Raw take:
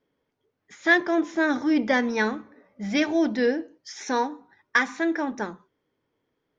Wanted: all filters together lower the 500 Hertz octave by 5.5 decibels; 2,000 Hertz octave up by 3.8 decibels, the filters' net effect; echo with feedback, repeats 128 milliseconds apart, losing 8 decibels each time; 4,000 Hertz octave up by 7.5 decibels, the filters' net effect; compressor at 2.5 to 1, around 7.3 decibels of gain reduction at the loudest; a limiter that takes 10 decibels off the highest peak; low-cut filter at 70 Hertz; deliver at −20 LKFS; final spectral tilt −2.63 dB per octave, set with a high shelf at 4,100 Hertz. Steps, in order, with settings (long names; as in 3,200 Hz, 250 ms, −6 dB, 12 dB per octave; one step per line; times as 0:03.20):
high-pass filter 70 Hz
parametric band 500 Hz −8 dB
parametric band 2,000 Hz +3 dB
parametric band 4,000 Hz +4 dB
high-shelf EQ 4,100 Hz +8 dB
downward compressor 2.5 to 1, threshold −23 dBFS
brickwall limiter −19.5 dBFS
repeating echo 128 ms, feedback 40%, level −8 dB
level +9.5 dB